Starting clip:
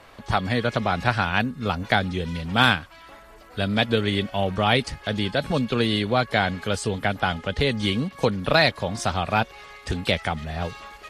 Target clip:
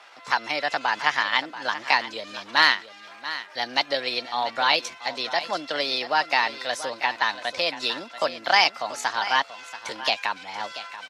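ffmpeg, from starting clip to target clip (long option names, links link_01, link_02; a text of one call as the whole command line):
ffmpeg -i in.wav -af "asetrate=53981,aresample=44100,atempo=0.816958,highpass=700,lowpass=7300,aecho=1:1:684:0.211,volume=1.5dB" out.wav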